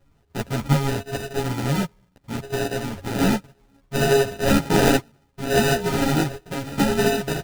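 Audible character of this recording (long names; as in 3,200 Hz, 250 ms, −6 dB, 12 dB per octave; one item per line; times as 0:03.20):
a buzz of ramps at a fixed pitch in blocks of 64 samples
phaser sweep stages 8, 0.66 Hz, lowest notch 350–1,100 Hz
aliases and images of a low sample rate 1,100 Hz, jitter 0%
a shimmering, thickened sound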